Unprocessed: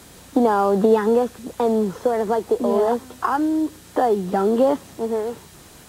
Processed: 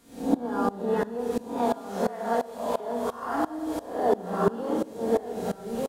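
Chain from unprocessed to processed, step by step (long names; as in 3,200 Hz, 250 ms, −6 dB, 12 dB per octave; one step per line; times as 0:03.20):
peak hold with a rise ahead of every peak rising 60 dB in 0.61 s
0:01.58–0:02.80: Butterworth high-pass 590 Hz 48 dB per octave
downward compressor 2.5 to 1, threshold −24 dBFS, peak gain reduction 9.5 dB
single-tap delay 1,192 ms −6 dB
rectangular room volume 1,100 cubic metres, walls mixed, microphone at 1.7 metres
tremolo with a ramp in dB swelling 2.9 Hz, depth 21 dB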